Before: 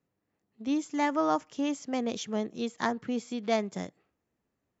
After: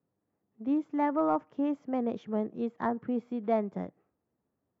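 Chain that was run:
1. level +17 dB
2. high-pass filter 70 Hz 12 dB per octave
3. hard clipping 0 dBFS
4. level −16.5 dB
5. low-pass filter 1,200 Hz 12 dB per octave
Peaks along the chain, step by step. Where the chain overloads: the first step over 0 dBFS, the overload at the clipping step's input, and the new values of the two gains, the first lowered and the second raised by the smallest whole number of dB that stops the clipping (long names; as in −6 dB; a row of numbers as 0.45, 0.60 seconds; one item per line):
+4.0, +4.5, 0.0, −16.5, −16.5 dBFS
step 1, 4.5 dB
step 1 +12 dB, step 4 −11.5 dB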